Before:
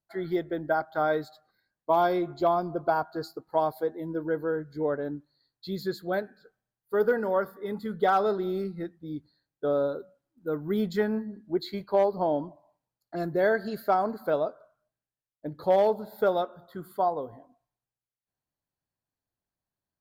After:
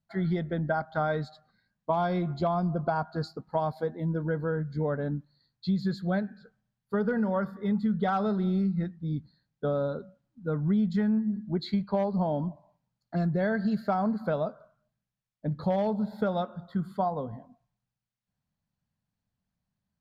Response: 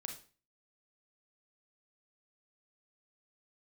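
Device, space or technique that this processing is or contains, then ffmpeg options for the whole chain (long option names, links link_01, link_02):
jukebox: -af "lowpass=5800,lowshelf=frequency=260:width_type=q:width=3:gain=7,acompressor=threshold=-26dB:ratio=5,volume=2dB"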